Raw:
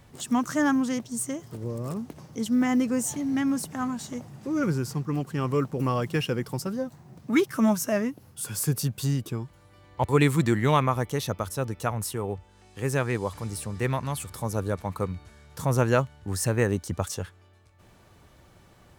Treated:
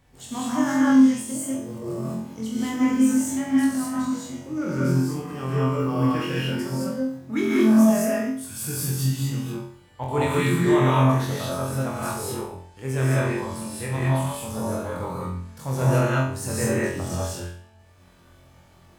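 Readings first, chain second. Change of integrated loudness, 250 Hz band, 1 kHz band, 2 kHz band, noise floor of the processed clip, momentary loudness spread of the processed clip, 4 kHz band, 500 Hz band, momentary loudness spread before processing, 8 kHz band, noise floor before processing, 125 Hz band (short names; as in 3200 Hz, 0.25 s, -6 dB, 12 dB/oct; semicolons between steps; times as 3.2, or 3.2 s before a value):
+4.0 dB, +5.5 dB, +2.0 dB, +2.5 dB, -53 dBFS, 13 LU, +2.0 dB, +2.5 dB, 12 LU, +1.5 dB, -56 dBFS, +3.5 dB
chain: flutter echo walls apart 3.9 m, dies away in 0.52 s; non-linear reverb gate 0.24 s rising, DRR -5.5 dB; gain -8 dB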